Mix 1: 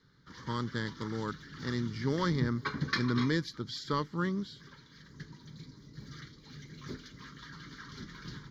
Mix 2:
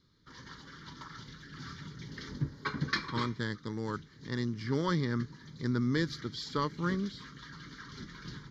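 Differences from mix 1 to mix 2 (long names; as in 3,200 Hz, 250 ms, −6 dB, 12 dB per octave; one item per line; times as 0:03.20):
speech: entry +2.65 s
master: add low-pass filter 12,000 Hz 12 dB per octave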